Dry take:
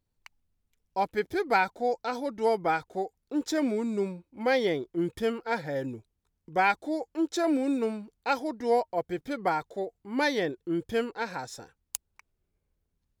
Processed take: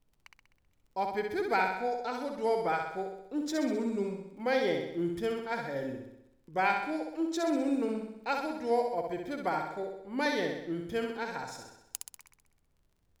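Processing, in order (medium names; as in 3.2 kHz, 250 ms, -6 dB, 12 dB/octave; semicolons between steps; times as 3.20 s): crackle 16 per s -49 dBFS; added noise brown -67 dBFS; flutter echo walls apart 11 m, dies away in 0.81 s; trim -5 dB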